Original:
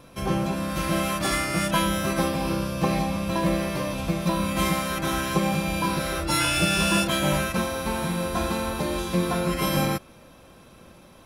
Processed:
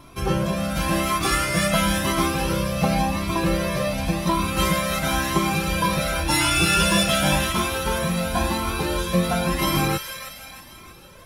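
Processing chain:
delay with a high-pass on its return 315 ms, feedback 48%, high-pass 1,600 Hz, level −6 dB
flanger whose copies keep moving one way rising 0.93 Hz
level +7.5 dB

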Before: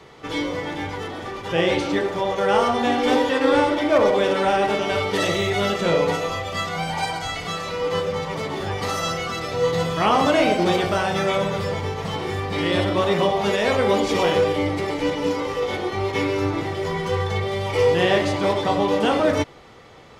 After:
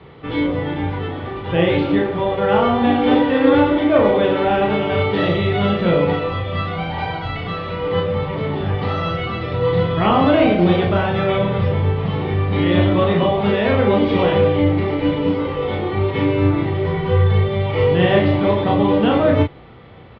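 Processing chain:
Butterworth low-pass 3,700 Hz 36 dB per octave
parametric band 100 Hz +10.5 dB 3 octaves
double-tracking delay 34 ms −4 dB
level −1 dB

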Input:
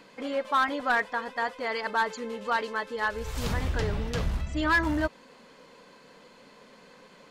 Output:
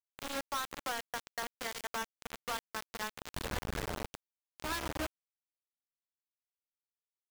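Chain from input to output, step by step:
mains-hum notches 60/120/180/240/300/360/420/480/540 Hz
0:00.75–0:01.43: elliptic high-pass filter 290 Hz
treble cut that deepens with the level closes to 1,300 Hz, closed at −24 dBFS
downward compressor 2.5 to 1, threshold −33 dBFS, peak gain reduction 7.5 dB
0:04.06–0:04.64: tuned comb filter 780 Hz, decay 0.31 s, mix 40%
bit reduction 5 bits
level −5 dB

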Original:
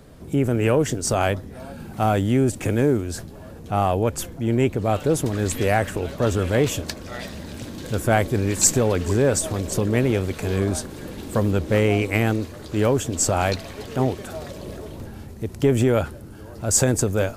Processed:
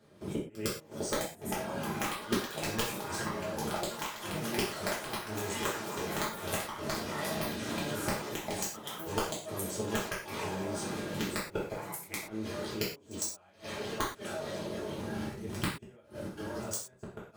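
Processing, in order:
running median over 3 samples
high-pass filter 310 Hz 6 dB per octave
high-shelf EQ 12,000 Hz −6 dB
notch filter 7,300 Hz, Q 13
output level in coarse steps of 23 dB
brickwall limiter −15.5 dBFS, peak gain reduction 7 dB
gate with flip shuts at −22 dBFS, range −40 dB
wrap-around overflow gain 20.5 dB
delay with pitch and tempo change per echo 771 ms, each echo +7 semitones, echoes 3
backwards echo 107 ms −21.5 dB
reverb whose tail is shaped and stops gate 150 ms falling, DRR −7 dB

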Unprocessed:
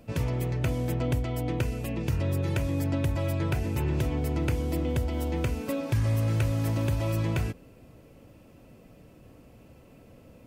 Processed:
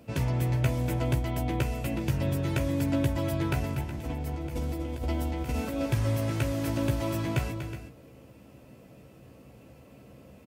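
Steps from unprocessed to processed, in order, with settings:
high-pass filter 67 Hz 12 dB per octave
0:03.61–0:05.86: compressor whose output falls as the input rises −32 dBFS, ratio −0.5
double-tracking delay 15 ms −6 dB
multi-tap delay 241/369 ms −10/−13 dB

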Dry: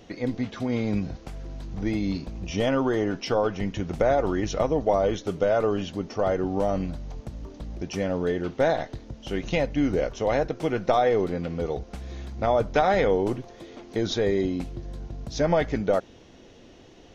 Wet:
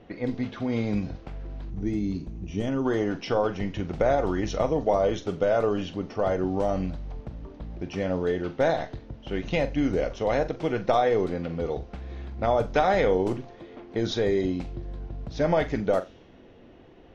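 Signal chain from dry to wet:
gain on a spectral selection 0:01.70–0:02.85, 450–5,600 Hz −9 dB
low-pass that shuts in the quiet parts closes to 2,100 Hz, open at −17.5 dBFS
on a send: flutter between parallel walls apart 7.4 metres, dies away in 0.21 s
on the sum: level −1 dB

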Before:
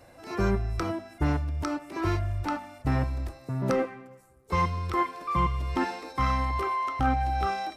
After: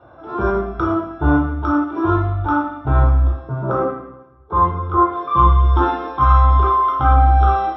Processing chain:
low-pass filter 2,300 Hz 12 dB per octave, from 0:03.62 1,400 Hz, from 0:05.12 3,500 Hz
convolution reverb RT60 0.70 s, pre-delay 3 ms, DRR −3.5 dB
level −6.5 dB

